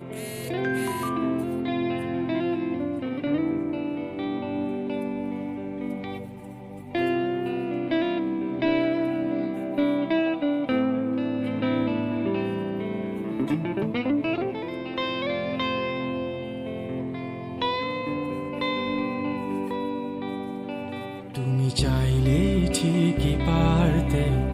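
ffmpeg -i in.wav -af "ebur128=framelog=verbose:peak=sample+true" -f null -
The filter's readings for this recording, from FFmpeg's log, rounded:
Integrated loudness:
  I:         -26.6 LUFS
  Threshold: -36.7 LUFS
Loudness range:
  LRA:         5.3 LU
  Threshold: -47.1 LUFS
  LRA low:   -29.6 LUFS
  LRA high:  -24.3 LUFS
Sample peak:
  Peak:       -9.2 dBFS
True peak:
  Peak:       -9.2 dBFS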